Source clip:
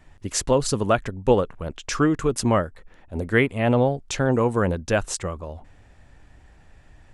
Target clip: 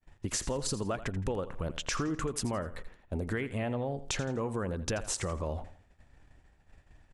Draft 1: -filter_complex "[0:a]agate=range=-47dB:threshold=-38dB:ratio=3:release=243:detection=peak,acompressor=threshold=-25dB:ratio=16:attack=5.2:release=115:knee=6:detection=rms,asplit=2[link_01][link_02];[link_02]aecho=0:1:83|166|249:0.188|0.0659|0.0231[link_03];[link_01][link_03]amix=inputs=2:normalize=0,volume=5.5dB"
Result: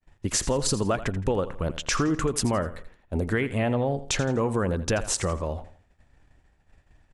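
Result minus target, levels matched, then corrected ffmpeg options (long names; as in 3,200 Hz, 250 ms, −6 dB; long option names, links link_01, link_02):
downward compressor: peak gain reduction −8.5 dB
-filter_complex "[0:a]agate=range=-47dB:threshold=-38dB:ratio=3:release=243:detection=peak,acompressor=threshold=-34dB:ratio=16:attack=5.2:release=115:knee=6:detection=rms,asplit=2[link_01][link_02];[link_02]aecho=0:1:83|166|249:0.188|0.0659|0.0231[link_03];[link_01][link_03]amix=inputs=2:normalize=0,volume=5.5dB"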